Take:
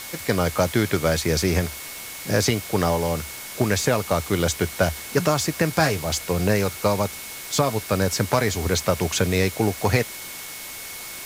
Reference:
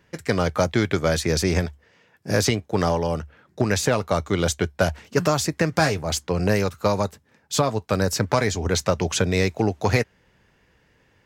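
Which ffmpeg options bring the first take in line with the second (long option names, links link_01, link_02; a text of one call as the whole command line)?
ffmpeg -i in.wav -af "bandreject=frequency=2200:width=30,afftdn=noise_reduction=25:noise_floor=-36" out.wav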